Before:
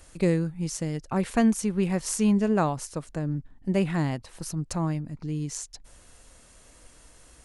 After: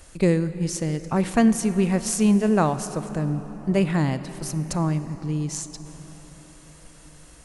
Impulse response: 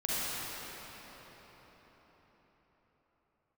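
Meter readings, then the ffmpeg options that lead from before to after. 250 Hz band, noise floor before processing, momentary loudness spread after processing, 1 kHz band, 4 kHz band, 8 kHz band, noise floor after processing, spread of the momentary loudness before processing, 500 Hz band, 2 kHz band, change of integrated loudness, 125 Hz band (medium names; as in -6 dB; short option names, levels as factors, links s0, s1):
+4.0 dB, -55 dBFS, 11 LU, +4.0 dB, +4.0 dB, +4.0 dB, -48 dBFS, 11 LU, +4.0 dB, +4.0 dB, +4.0 dB, +4.0 dB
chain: -filter_complex "[0:a]asplit=2[s0][s1];[1:a]atrim=start_sample=2205[s2];[s1][s2]afir=irnorm=-1:irlink=0,volume=0.106[s3];[s0][s3]amix=inputs=2:normalize=0,volume=1.41"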